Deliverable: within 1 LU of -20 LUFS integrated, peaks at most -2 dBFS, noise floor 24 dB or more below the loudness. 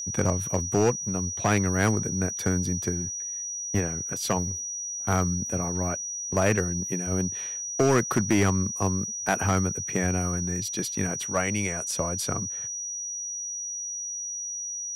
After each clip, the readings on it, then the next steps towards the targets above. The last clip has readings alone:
clipped samples 0.6%; clipping level -15.0 dBFS; steady tone 5.8 kHz; tone level -31 dBFS; loudness -27.0 LUFS; peak level -15.0 dBFS; loudness target -20.0 LUFS
-> clip repair -15 dBFS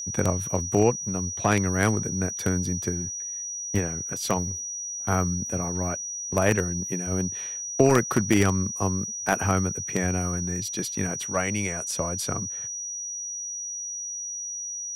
clipped samples 0.0%; steady tone 5.8 kHz; tone level -31 dBFS
-> band-stop 5.8 kHz, Q 30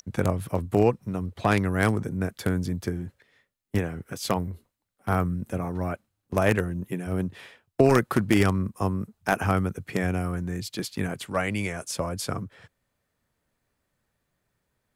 steady tone not found; loudness -27.0 LUFS; peak level -5.5 dBFS; loudness target -20.0 LUFS
-> trim +7 dB; peak limiter -2 dBFS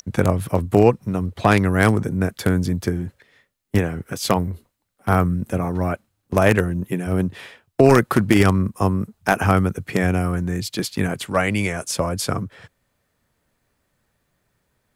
loudness -20.5 LUFS; peak level -2.0 dBFS; noise floor -72 dBFS

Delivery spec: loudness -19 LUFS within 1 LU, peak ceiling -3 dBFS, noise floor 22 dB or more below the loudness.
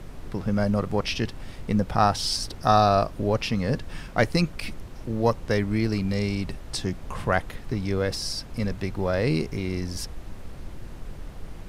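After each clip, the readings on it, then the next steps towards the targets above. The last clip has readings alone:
noise floor -41 dBFS; noise floor target -48 dBFS; loudness -26.0 LUFS; peak level -5.5 dBFS; loudness target -19.0 LUFS
-> noise print and reduce 7 dB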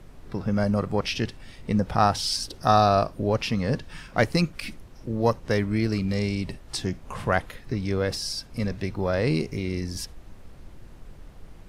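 noise floor -47 dBFS; noise floor target -48 dBFS
-> noise print and reduce 6 dB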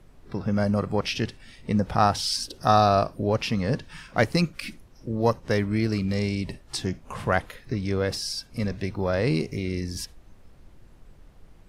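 noise floor -52 dBFS; loudness -26.0 LUFS; peak level -5.5 dBFS; loudness target -19.0 LUFS
-> trim +7 dB; peak limiter -3 dBFS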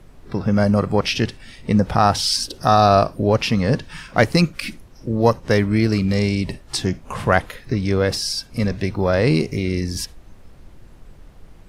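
loudness -19.5 LUFS; peak level -3.0 dBFS; noise floor -45 dBFS

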